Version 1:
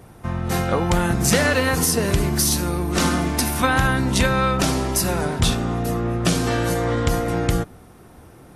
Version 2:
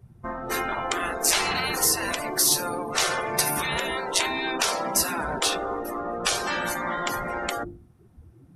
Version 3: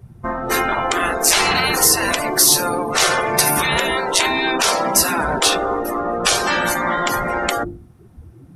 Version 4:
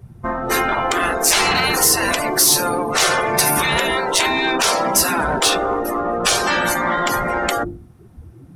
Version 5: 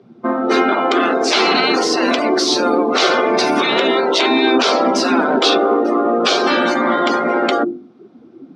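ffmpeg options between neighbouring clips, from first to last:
ffmpeg -i in.wav -af "afftdn=noise_reduction=22:noise_floor=-33,bandreject=frequency=50:width_type=h:width=6,bandreject=frequency=100:width_type=h:width=6,bandreject=frequency=150:width_type=h:width=6,bandreject=frequency=200:width_type=h:width=6,bandreject=frequency=250:width_type=h:width=6,bandreject=frequency=300:width_type=h:width=6,bandreject=frequency=350:width_type=h:width=6,afftfilt=real='re*lt(hypot(re,im),0.224)':imag='im*lt(hypot(re,im),0.224)':win_size=1024:overlap=0.75,volume=2dB" out.wav
ffmpeg -i in.wav -af "alimiter=level_in=10dB:limit=-1dB:release=50:level=0:latency=1,volume=-1dB" out.wav
ffmpeg -i in.wav -af "acontrast=52,volume=-5dB" out.wav
ffmpeg -i in.wav -af "highpass=frequency=240:width=0.5412,highpass=frequency=240:width=1.3066,equalizer=frequency=250:width_type=q:width=4:gain=9,equalizer=frequency=380:width_type=q:width=4:gain=4,equalizer=frequency=940:width_type=q:width=4:gain=-6,equalizer=frequency=1800:width_type=q:width=4:gain=-9,equalizer=frequency=2700:width_type=q:width=4:gain=-4,lowpass=frequency=4500:width=0.5412,lowpass=frequency=4500:width=1.3066,volume=5dB" out.wav

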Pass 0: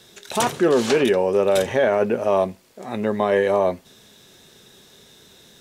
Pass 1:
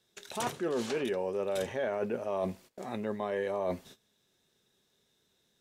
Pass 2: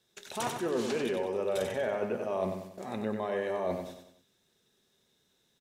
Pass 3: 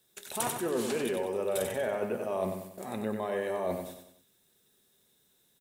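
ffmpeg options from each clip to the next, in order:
ffmpeg -i in.wav -af "agate=range=-20dB:threshold=-45dB:ratio=16:detection=peak,areverse,acompressor=threshold=-27dB:ratio=5,areverse,volume=-3.5dB" out.wav
ffmpeg -i in.wav -af "aecho=1:1:94|188|282|376|470:0.501|0.216|0.0927|0.0398|0.0171" out.wav
ffmpeg -i in.wav -af "aexciter=amount=2.8:drive=7.8:freq=8100" out.wav

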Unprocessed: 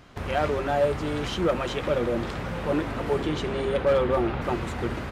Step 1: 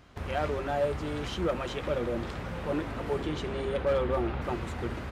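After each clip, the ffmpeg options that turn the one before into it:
ffmpeg -i in.wav -af "equalizer=frequency=69:width_type=o:width=0.4:gain=7,volume=-5.5dB" out.wav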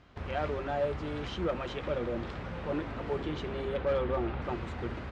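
ffmpeg -i in.wav -af "lowpass=4800,volume=-2.5dB" out.wav

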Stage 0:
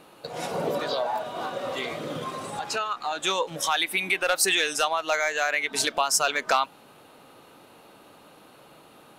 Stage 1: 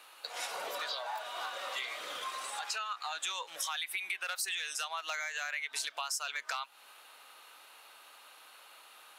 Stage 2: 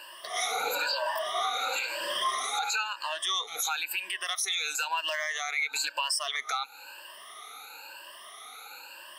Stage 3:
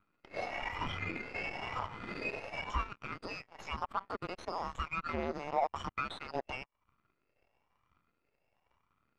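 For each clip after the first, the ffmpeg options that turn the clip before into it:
ffmpeg -i in.wav -filter_complex "[0:a]highpass=1300,asplit=2[link_01][link_02];[link_02]alimiter=limit=-19.5dB:level=0:latency=1:release=65,volume=1dB[link_03];[link_01][link_03]amix=inputs=2:normalize=0,acompressor=threshold=-30dB:ratio=4,volume=-5dB" out.wav
ffmpeg -i in.wav -af "afftfilt=real='re*pow(10,23/40*sin(2*PI*(1.3*log(max(b,1)*sr/1024/100)/log(2)-(1)*(pts-256)/sr)))':imag='im*pow(10,23/40*sin(2*PI*(1.3*log(max(b,1)*sr/1024/100)/log(2)-(1)*(pts-256)/sr)))':win_size=1024:overlap=0.75,alimiter=limit=-24dB:level=0:latency=1:release=23,volume=4dB" out.wav
ffmpeg -i in.wav -af "afftfilt=real='real(if(lt(b,272),68*(eq(floor(b/68),0)*1+eq(floor(b/68),1)*0+eq(floor(b/68),2)*3+eq(floor(b/68),3)*2)+mod(b,68),b),0)':imag='imag(if(lt(b,272),68*(eq(floor(b/68),0)*1+eq(floor(b/68),1)*0+eq(floor(b/68),2)*3+eq(floor(b/68),3)*2)+mod(b,68),b),0)':win_size=2048:overlap=0.75,aeval=exprs='0.133*(cos(1*acos(clip(val(0)/0.133,-1,1)))-cos(1*PI/2))+0.00168*(cos(6*acos(clip(val(0)/0.133,-1,1)))-cos(6*PI/2))+0.0188*(cos(7*acos(clip(val(0)/0.133,-1,1)))-cos(7*PI/2))+0.00299*(cos(8*acos(clip(val(0)/0.133,-1,1)))-cos(8*PI/2))':channel_layout=same,lowpass=1500" out.wav

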